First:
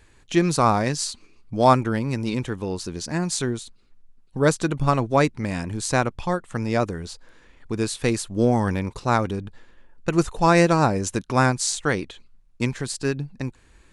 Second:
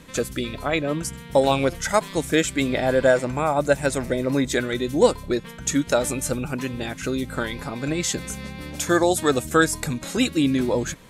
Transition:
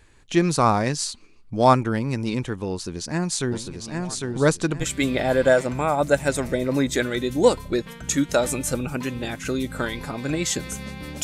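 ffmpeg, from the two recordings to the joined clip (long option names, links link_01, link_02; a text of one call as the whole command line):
ffmpeg -i cue0.wav -i cue1.wav -filter_complex "[0:a]asplit=3[link_01][link_02][link_03];[link_01]afade=type=out:start_time=3.51:duration=0.02[link_04];[link_02]aecho=1:1:802|1604|2406|3208:0.631|0.17|0.046|0.0124,afade=type=in:start_time=3.51:duration=0.02,afade=type=out:start_time=4.86:duration=0.02[link_05];[link_03]afade=type=in:start_time=4.86:duration=0.02[link_06];[link_04][link_05][link_06]amix=inputs=3:normalize=0,apad=whole_dur=11.23,atrim=end=11.23,atrim=end=4.86,asetpts=PTS-STARTPTS[link_07];[1:a]atrim=start=2.38:end=8.81,asetpts=PTS-STARTPTS[link_08];[link_07][link_08]acrossfade=duration=0.06:curve1=tri:curve2=tri" out.wav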